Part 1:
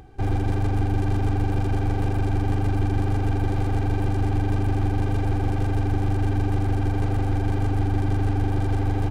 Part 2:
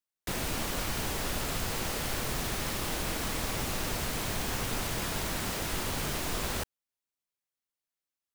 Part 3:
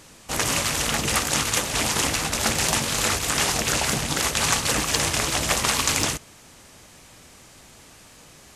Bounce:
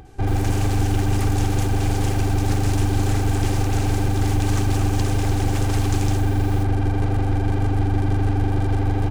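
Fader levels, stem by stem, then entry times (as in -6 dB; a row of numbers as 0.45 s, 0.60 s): +2.5 dB, -8.5 dB, -13.0 dB; 0.00 s, 0.00 s, 0.05 s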